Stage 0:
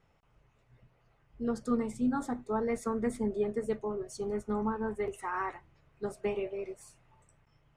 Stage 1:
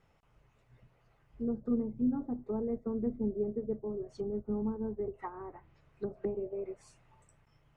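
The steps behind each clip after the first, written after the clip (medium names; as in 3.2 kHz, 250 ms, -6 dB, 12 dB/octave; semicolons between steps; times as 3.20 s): low-pass that closes with the level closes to 430 Hz, closed at -31.5 dBFS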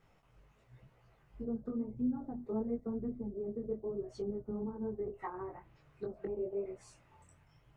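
compression 3:1, threshold -37 dBFS, peak gain reduction 9 dB; chorus voices 2, 0.96 Hz, delay 19 ms, depth 3.8 ms; trim +4.5 dB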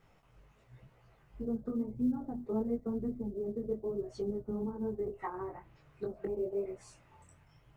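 short-mantissa float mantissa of 6-bit; trim +2.5 dB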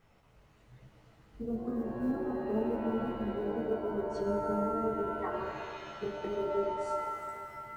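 pitch-shifted reverb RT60 2.2 s, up +7 st, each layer -2 dB, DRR 4 dB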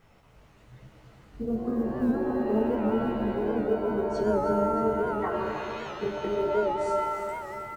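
feedback delay 310 ms, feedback 57%, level -10 dB; warped record 78 rpm, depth 100 cents; trim +6 dB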